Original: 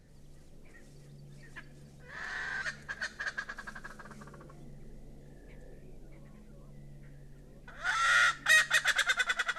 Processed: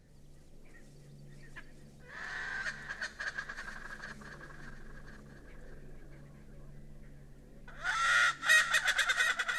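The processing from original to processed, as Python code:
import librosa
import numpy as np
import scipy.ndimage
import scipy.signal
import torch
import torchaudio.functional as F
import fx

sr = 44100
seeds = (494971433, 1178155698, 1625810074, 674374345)

y = fx.reverse_delay_fb(x, sr, ms=523, feedback_pct=54, wet_db=-8.5)
y = y * 10.0 ** (-2.0 / 20.0)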